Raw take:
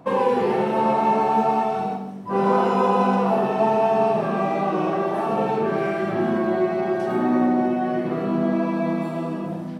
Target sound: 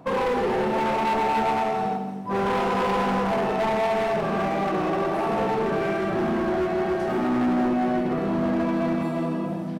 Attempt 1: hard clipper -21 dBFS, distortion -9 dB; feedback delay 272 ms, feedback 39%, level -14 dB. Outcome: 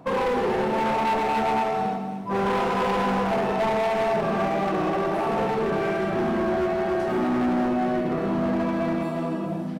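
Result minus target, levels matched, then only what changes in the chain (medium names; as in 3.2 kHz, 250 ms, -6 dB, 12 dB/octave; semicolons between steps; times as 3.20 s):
echo 102 ms late
change: feedback delay 170 ms, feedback 39%, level -14 dB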